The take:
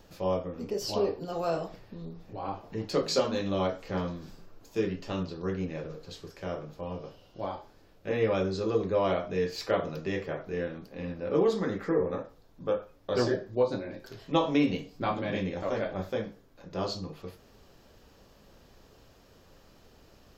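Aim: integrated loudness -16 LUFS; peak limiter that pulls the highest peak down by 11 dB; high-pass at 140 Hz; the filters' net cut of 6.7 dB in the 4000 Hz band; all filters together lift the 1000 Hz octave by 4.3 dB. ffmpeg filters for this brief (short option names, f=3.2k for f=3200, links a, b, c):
-af "highpass=140,equalizer=f=1k:t=o:g=6,equalizer=f=4k:t=o:g=-9,volume=18dB,alimiter=limit=-3.5dB:level=0:latency=1"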